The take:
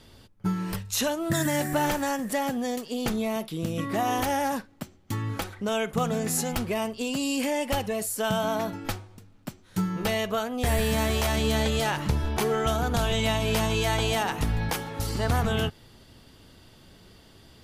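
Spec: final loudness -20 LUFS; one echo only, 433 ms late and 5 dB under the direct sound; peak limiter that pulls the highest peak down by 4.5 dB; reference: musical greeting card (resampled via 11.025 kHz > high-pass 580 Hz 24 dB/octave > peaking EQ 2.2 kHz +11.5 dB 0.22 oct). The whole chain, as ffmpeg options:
-af "alimiter=limit=0.112:level=0:latency=1,aecho=1:1:433:0.562,aresample=11025,aresample=44100,highpass=f=580:w=0.5412,highpass=f=580:w=1.3066,equalizer=f=2200:t=o:w=0.22:g=11.5,volume=3.35"

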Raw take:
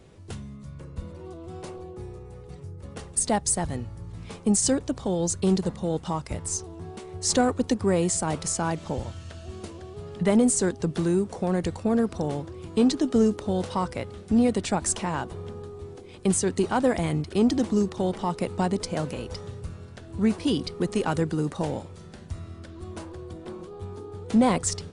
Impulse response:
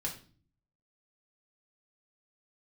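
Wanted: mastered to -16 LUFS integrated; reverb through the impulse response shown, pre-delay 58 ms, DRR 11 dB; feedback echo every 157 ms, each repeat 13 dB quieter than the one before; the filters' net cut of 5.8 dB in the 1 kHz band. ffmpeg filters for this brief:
-filter_complex "[0:a]equalizer=f=1000:t=o:g=-8,aecho=1:1:157|314|471:0.224|0.0493|0.0108,asplit=2[s0][s1];[1:a]atrim=start_sample=2205,adelay=58[s2];[s1][s2]afir=irnorm=-1:irlink=0,volume=0.237[s3];[s0][s3]amix=inputs=2:normalize=0,volume=3.16"

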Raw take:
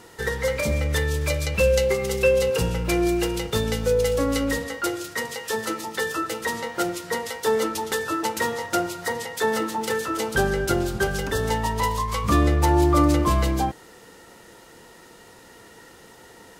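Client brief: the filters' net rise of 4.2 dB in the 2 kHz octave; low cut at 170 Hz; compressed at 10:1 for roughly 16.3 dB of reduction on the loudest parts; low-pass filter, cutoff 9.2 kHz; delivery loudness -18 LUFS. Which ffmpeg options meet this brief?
-af "highpass=170,lowpass=9200,equalizer=f=2000:t=o:g=5,acompressor=threshold=0.0251:ratio=10,volume=7.08"

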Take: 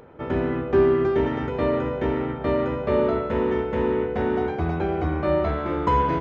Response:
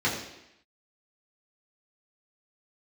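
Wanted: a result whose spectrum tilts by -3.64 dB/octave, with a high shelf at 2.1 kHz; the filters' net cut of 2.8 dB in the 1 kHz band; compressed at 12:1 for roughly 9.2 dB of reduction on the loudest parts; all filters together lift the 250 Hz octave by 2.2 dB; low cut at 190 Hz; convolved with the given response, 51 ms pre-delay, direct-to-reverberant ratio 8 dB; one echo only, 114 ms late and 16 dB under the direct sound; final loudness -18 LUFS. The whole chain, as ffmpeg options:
-filter_complex "[0:a]highpass=190,equalizer=f=250:t=o:g=4.5,equalizer=f=1000:t=o:g=-5,highshelf=f=2100:g=7.5,acompressor=threshold=0.0794:ratio=12,aecho=1:1:114:0.158,asplit=2[s0][s1];[1:a]atrim=start_sample=2205,adelay=51[s2];[s1][s2]afir=irnorm=-1:irlink=0,volume=0.0944[s3];[s0][s3]amix=inputs=2:normalize=0,volume=2.66"

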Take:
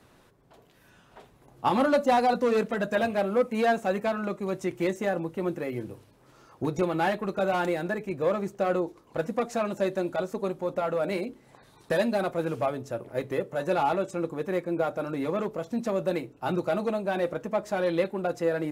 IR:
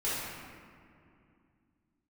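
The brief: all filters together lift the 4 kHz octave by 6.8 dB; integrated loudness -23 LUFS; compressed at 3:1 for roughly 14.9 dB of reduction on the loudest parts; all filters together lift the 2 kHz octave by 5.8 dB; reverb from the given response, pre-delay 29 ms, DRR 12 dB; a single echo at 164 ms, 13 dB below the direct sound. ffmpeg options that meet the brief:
-filter_complex "[0:a]equalizer=f=2000:t=o:g=6.5,equalizer=f=4000:t=o:g=6,acompressor=threshold=0.0112:ratio=3,aecho=1:1:164:0.224,asplit=2[s0][s1];[1:a]atrim=start_sample=2205,adelay=29[s2];[s1][s2]afir=irnorm=-1:irlink=0,volume=0.1[s3];[s0][s3]amix=inputs=2:normalize=0,volume=5.96"

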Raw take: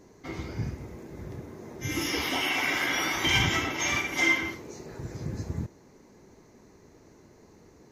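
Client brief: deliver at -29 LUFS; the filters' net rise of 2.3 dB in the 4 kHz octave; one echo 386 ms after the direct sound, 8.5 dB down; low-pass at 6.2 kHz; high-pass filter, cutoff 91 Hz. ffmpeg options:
-af "highpass=91,lowpass=6200,equalizer=f=4000:t=o:g=4,aecho=1:1:386:0.376,volume=0.708"

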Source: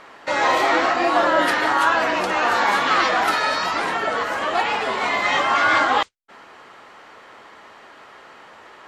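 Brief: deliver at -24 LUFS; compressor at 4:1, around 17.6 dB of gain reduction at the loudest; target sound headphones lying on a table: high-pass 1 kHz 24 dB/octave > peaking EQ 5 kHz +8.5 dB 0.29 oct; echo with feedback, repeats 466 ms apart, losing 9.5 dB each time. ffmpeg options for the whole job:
-af "acompressor=threshold=0.0158:ratio=4,highpass=f=1000:w=0.5412,highpass=f=1000:w=1.3066,equalizer=f=5000:t=o:w=0.29:g=8.5,aecho=1:1:466|932|1398|1864:0.335|0.111|0.0365|0.012,volume=4.47"

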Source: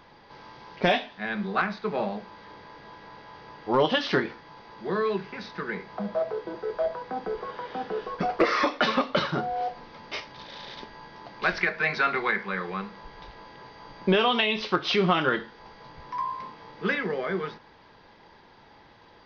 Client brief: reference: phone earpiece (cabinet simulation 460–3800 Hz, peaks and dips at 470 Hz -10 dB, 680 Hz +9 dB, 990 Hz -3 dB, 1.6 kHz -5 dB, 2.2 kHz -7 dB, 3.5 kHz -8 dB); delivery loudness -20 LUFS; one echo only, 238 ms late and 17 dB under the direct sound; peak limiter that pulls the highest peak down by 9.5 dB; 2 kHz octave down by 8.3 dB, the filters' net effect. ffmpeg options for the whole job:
-af "equalizer=f=2000:t=o:g=-4,alimiter=limit=0.0841:level=0:latency=1,highpass=460,equalizer=f=470:t=q:w=4:g=-10,equalizer=f=680:t=q:w=4:g=9,equalizer=f=990:t=q:w=4:g=-3,equalizer=f=1600:t=q:w=4:g=-5,equalizer=f=2200:t=q:w=4:g=-7,equalizer=f=3500:t=q:w=4:g=-8,lowpass=f=3800:w=0.5412,lowpass=f=3800:w=1.3066,aecho=1:1:238:0.141,volume=5.31"

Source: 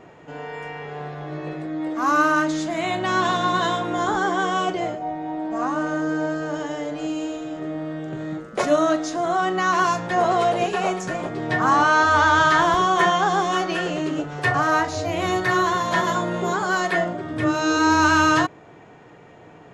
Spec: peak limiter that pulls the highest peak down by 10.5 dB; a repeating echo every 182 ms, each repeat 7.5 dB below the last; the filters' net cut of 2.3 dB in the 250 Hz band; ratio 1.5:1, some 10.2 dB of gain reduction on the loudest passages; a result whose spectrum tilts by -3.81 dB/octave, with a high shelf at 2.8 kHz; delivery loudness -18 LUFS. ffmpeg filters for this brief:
-af "equalizer=f=250:t=o:g=-3.5,highshelf=f=2800:g=5.5,acompressor=threshold=0.00794:ratio=1.5,alimiter=level_in=1.12:limit=0.0631:level=0:latency=1,volume=0.891,aecho=1:1:182|364|546|728|910:0.422|0.177|0.0744|0.0312|0.0131,volume=5.62"

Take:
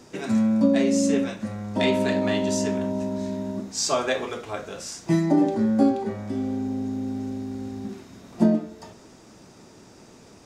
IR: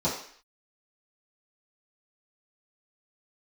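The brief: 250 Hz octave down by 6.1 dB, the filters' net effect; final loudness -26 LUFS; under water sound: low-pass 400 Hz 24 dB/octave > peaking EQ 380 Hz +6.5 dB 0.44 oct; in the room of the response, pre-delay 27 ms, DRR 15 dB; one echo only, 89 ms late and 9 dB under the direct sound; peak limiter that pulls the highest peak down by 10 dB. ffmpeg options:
-filter_complex "[0:a]equalizer=f=250:t=o:g=-8.5,alimiter=limit=0.0944:level=0:latency=1,aecho=1:1:89:0.355,asplit=2[s0][s1];[1:a]atrim=start_sample=2205,adelay=27[s2];[s1][s2]afir=irnorm=-1:irlink=0,volume=0.0501[s3];[s0][s3]amix=inputs=2:normalize=0,lowpass=f=400:w=0.5412,lowpass=f=400:w=1.3066,equalizer=f=380:t=o:w=0.44:g=6.5,volume=2.24"

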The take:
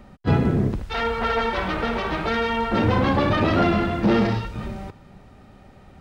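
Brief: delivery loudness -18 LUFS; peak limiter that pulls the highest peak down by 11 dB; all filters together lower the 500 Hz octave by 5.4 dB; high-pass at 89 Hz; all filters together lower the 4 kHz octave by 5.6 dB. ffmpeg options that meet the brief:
-af "highpass=89,equalizer=f=500:t=o:g=-7,equalizer=f=4000:t=o:g=-7.5,volume=3.55,alimiter=limit=0.355:level=0:latency=1"

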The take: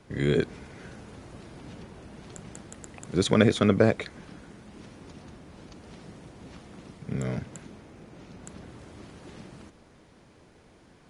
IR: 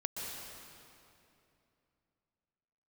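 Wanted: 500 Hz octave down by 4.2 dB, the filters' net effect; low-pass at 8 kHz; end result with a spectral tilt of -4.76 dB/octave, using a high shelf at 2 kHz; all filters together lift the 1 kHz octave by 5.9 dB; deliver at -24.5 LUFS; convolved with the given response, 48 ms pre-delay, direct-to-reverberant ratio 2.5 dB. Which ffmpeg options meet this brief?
-filter_complex "[0:a]lowpass=8000,equalizer=f=500:t=o:g=-7.5,equalizer=f=1000:t=o:g=9,highshelf=f=2000:g=3.5,asplit=2[s0][s1];[1:a]atrim=start_sample=2205,adelay=48[s2];[s1][s2]afir=irnorm=-1:irlink=0,volume=0.596[s3];[s0][s3]amix=inputs=2:normalize=0,volume=1.19"

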